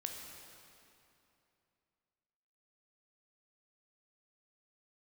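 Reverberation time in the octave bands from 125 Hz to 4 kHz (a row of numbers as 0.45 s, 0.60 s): 3.1 s, 3.0 s, 2.9 s, 2.8 s, 2.5 s, 2.3 s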